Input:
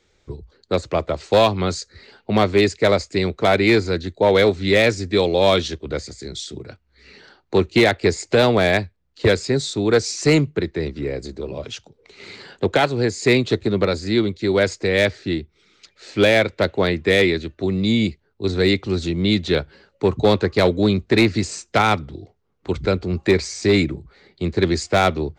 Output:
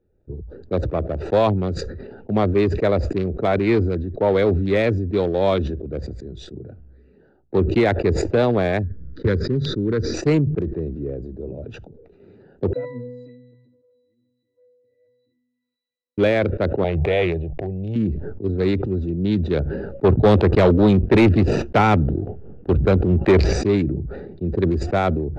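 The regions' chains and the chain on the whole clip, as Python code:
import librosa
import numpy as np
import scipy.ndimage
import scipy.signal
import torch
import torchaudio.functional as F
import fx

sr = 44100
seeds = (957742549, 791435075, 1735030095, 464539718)

y = fx.chain(x, sr, fx.leveller(passes=1),
    fx.air_absorb(metres=89.0),
    fx.fixed_phaser(hz=2700.0, stages=6), at=(8.83, 10.14))
y = fx.chain(y, sr, fx.crossing_spikes(level_db=-16.5),
    fx.differentiator(),
    fx.octave_resonator(note='B', decay_s=0.71), at=(12.73, 16.18))
y = fx.chain(y, sr, fx.backlash(play_db=-45.5),
    fx.curve_eq(hz=(100.0, 150.0, 230.0, 360.0, 770.0, 1300.0, 2100.0, 3000.0, 4600.0, 7100.0), db=(0, 2, -16, -6, 11, -17, 0, 7, -15, -9)),
    fx.pre_swell(db_per_s=29.0), at=(16.84, 17.96))
y = fx.chain(y, sr, fx.lowpass(hz=4400.0, slope=12),
    fx.peak_eq(hz=3000.0, db=6.5, octaves=0.38),
    fx.leveller(passes=2), at=(20.04, 23.53))
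y = fx.wiener(y, sr, points=41)
y = fx.lowpass(y, sr, hz=1200.0, slope=6)
y = fx.sustainer(y, sr, db_per_s=38.0)
y = y * librosa.db_to_amplitude(-1.0)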